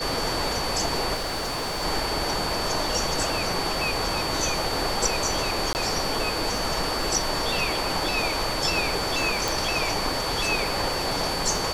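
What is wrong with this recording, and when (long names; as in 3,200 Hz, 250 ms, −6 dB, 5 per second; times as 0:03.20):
surface crackle 37 per second −32 dBFS
whistle 4,500 Hz −31 dBFS
0:01.14–0:01.83: clipping −25.5 dBFS
0:05.73–0:05.75: drop-out 19 ms
0:09.48: click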